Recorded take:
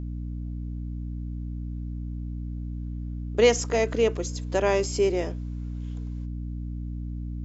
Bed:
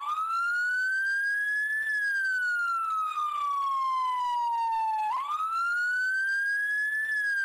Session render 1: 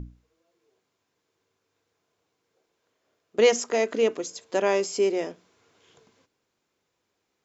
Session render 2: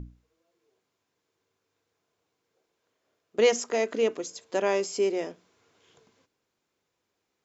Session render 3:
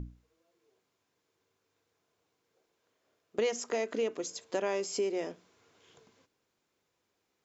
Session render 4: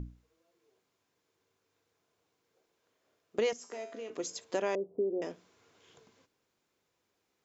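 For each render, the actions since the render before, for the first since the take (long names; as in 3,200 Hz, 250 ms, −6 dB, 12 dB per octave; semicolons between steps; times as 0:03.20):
mains-hum notches 60/120/180/240/300 Hz
level −2.5 dB
downward compressor 3 to 1, threshold −30 dBFS, peak gain reduction 10.5 dB
0:03.53–0:04.10: tuned comb filter 84 Hz, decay 0.68 s, mix 80%; 0:04.75–0:05.22: inverse Chebyshev low-pass filter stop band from 3,400 Hz, stop band 80 dB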